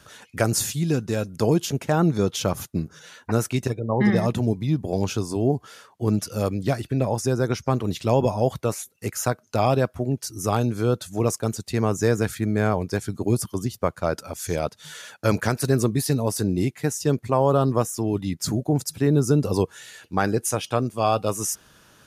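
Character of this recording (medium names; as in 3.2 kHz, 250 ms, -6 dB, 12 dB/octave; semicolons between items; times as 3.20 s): noise floor -57 dBFS; spectral tilt -6.0 dB/octave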